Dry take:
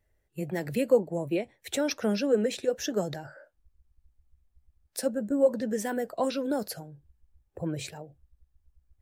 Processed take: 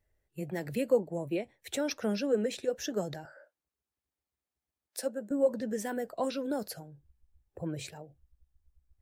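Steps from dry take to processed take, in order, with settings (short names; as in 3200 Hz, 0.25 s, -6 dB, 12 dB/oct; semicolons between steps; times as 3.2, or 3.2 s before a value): 3.25–5.31 HPF 310 Hz 12 dB/oct; gain -4 dB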